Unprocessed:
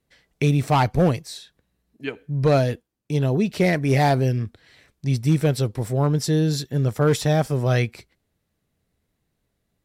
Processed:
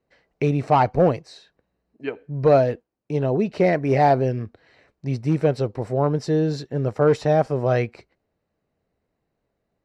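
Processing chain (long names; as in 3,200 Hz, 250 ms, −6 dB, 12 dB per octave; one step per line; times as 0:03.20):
low-pass filter 5,000 Hz 12 dB per octave
parametric band 610 Hz +10.5 dB 2.4 octaves
notch filter 3,400 Hz, Q 7.1
level −6 dB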